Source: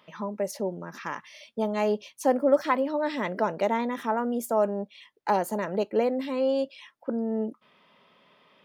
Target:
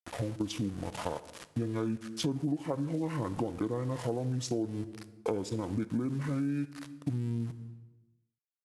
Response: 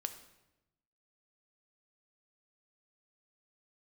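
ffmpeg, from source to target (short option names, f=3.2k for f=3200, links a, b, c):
-filter_complex "[0:a]aeval=exprs='val(0)*gte(abs(val(0)),0.00841)':c=same,asetrate=23361,aresample=44100,atempo=1.88775,asplit=2[a][b];[1:a]atrim=start_sample=2205,highshelf=f=4.9k:g=8[c];[b][c]afir=irnorm=-1:irlink=0,volume=-0.5dB[d];[a][d]amix=inputs=2:normalize=0,acompressor=threshold=-30dB:ratio=6"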